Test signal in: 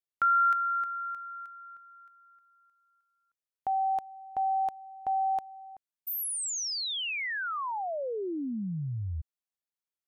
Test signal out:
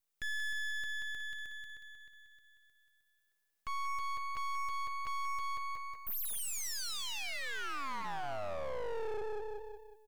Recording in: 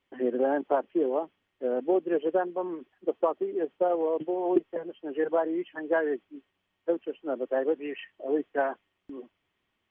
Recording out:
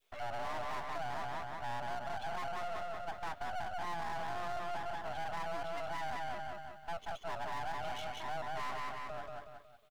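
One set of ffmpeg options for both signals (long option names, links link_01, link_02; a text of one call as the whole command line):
ffmpeg -i in.wav -filter_complex "[0:a]acrossover=split=520[link_01][link_02];[link_02]crystalizer=i=2:c=0[link_03];[link_01][link_03]amix=inputs=2:normalize=0,afreqshift=340,highpass=frequency=260:width=0.5412,highpass=frequency=260:width=1.3066,equalizer=frequency=440:width_type=o:width=0.28:gain=8.5,bandreject=frequency=890:width=15,alimiter=limit=-22.5dB:level=0:latency=1,adynamicequalizer=threshold=0.00891:dfrequency=960:dqfactor=0.85:tfrequency=960:tqfactor=0.85:attack=5:release=100:ratio=0.375:range=3:mode=boostabove:tftype=bell,asplit=2[link_04][link_05];[link_05]aecho=0:1:183|366|549|732|915:0.562|0.219|0.0855|0.0334|0.013[link_06];[link_04][link_06]amix=inputs=2:normalize=0,aeval=exprs='max(val(0),0)':channel_layout=same,aeval=exprs='0.211*(cos(1*acos(clip(val(0)/0.211,-1,1)))-cos(1*PI/2))+0.0335*(cos(4*acos(clip(val(0)/0.211,-1,1)))-cos(4*PI/2))':channel_layout=same,acompressor=threshold=-38dB:ratio=3:attack=0.11:release=23:knee=6,volume=3dB" out.wav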